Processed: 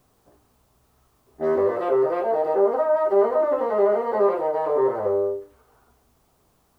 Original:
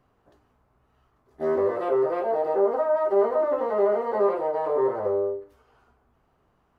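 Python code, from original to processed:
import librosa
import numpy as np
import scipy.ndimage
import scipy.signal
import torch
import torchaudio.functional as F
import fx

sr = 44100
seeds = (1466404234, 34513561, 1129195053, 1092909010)

y = fx.env_lowpass(x, sr, base_hz=1300.0, full_db=-21.5)
y = fx.quant_dither(y, sr, seeds[0], bits=12, dither='triangular')
y = F.gain(torch.from_numpy(y), 2.5).numpy()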